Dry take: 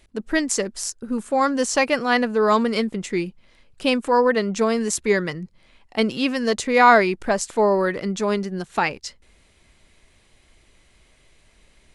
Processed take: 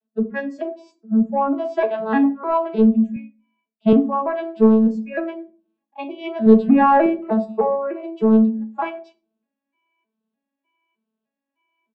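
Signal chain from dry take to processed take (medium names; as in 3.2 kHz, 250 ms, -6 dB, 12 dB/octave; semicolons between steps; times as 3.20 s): vocoder on a broken chord major triad, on A3, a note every 304 ms; spectral noise reduction 21 dB; 6.46–7.06 s: bass shelf 370 Hz +8 dB; comb 4.8 ms, depth 83%; in parallel at -4 dB: saturation -14 dBFS, distortion -10 dB; on the sum: distance through air 420 m; on a send at -5 dB: reverberation RT60 0.40 s, pre-delay 6 ms; 3.16–3.93 s: on the sum: three bands expanded up and down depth 40%; trim -3.5 dB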